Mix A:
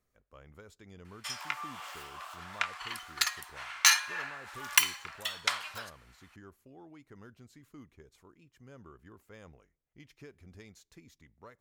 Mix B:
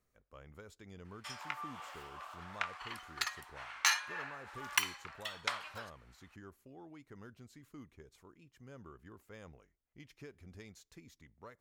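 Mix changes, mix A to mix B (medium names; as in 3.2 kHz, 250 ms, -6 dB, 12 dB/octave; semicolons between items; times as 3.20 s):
background: add tilt EQ -2.5 dB/octave; reverb: off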